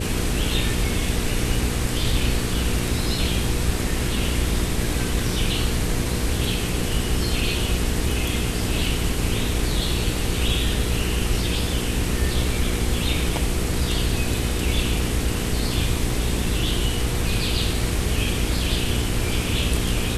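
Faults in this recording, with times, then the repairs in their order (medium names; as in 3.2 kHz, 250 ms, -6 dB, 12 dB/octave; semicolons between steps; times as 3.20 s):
hum 60 Hz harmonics 8 -27 dBFS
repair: de-hum 60 Hz, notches 8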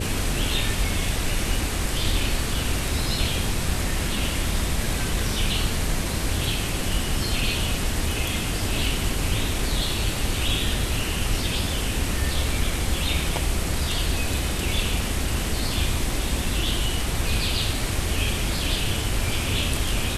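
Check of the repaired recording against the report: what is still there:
nothing left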